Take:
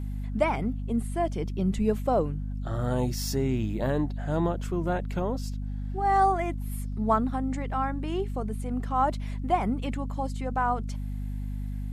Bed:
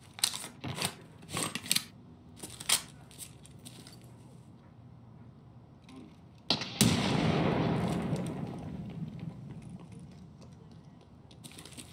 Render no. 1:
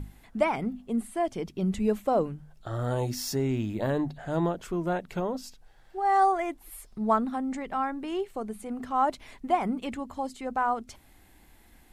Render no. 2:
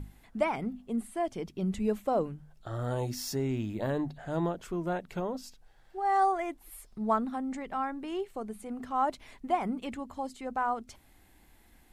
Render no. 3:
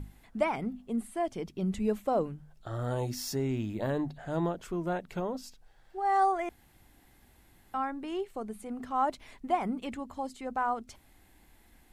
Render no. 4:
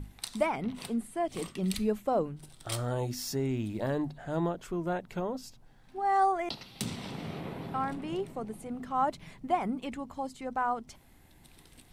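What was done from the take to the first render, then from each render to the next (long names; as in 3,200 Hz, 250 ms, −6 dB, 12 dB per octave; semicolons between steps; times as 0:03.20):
mains-hum notches 50/100/150/200/250 Hz
level −3.5 dB
0:06.49–0:07.74: fill with room tone
mix in bed −10.5 dB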